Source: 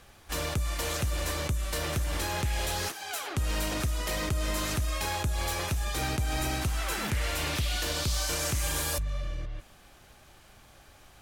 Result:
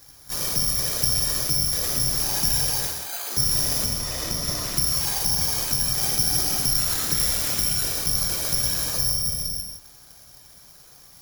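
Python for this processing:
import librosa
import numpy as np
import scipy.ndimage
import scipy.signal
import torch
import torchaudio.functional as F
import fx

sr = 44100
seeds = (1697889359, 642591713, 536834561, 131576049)

y = fx.whisperise(x, sr, seeds[0])
y = (np.kron(scipy.signal.resample_poly(y, 1, 8), np.eye(8)[0]) * 8)[:len(y)]
y = fx.high_shelf(y, sr, hz=7700.0, db=-8.0, at=(3.84, 4.77))
y = fx.rev_gated(y, sr, seeds[1], gate_ms=210, shape='flat', drr_db=1.5)
y = y * librosa.db_to_amplitude(-4.0)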